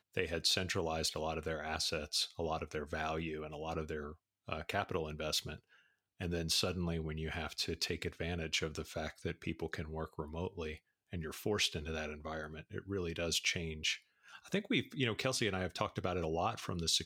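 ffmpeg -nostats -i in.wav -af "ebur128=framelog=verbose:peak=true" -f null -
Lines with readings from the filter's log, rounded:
Integrated loudness:
  I:         -37.6 LUFS
  Threshold: -47.9 LUFS
Loudness range:
  LRA:         4.1 LU
  Threshold: -58.4 LUFS
  LRA low:   -40.4 LUFS
  LRA high:  -36.3 LUFS
True peak:
  Peak:      -16.1 dBFS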